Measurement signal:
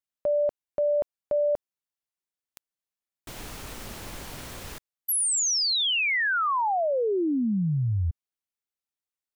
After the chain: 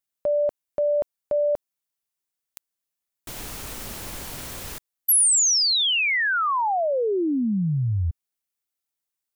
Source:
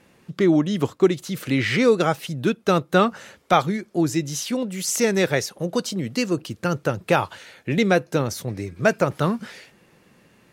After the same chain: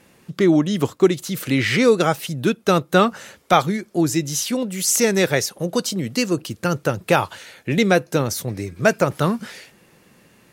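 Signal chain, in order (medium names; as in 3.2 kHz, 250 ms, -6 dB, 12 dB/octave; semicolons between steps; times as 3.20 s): treble shelf 6.7 kHz +7.5 dB; trim +2 dB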